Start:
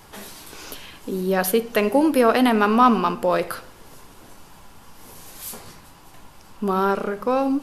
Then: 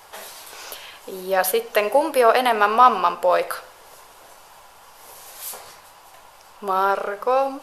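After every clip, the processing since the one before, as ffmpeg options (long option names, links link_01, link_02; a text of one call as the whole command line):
ffmpeg -i in.wav -af "lowshelf=frequency=390:width_type=q:width=1.5:gain=-13.5,volume=1.5dB" out.wav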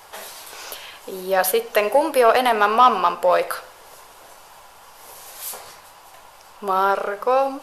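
ffmpeg -i in.wav -af "asoftclip=type=tanh:threshold=-4.5dB,volume=1.5dB" out.wav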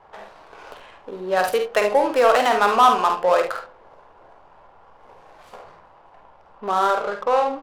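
ffmpeg -i in.wav -af "adynamicsmooth=sensitivity=3:basefreq=980,aecho=1:1:49|73:0.473|0.282,volume=-1.5dB" out.wav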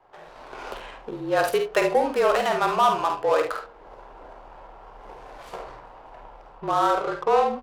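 ffmpeg -i in.wav -af "dynaudnorm=framelen=230:gausssize=3:maxgain=13dB,afreqshift=-41,volume=-8dB" out.wav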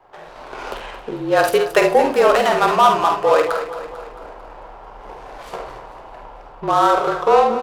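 ffmpeg -i in.wav -af "aecho=1:1:223|446|669|892|1115|1338:0.251|0.136|0.0732|0.0396|0.0214|0.0115,volume=6.5dB" out.wav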